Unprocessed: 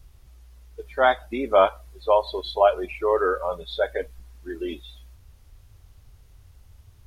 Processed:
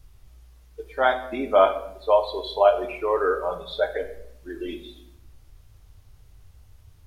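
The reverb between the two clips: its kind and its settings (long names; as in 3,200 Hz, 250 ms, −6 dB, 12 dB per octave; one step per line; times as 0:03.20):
rectangular room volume 200 cubic metres, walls mixed, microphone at 0.47 metres
level −1.5 dB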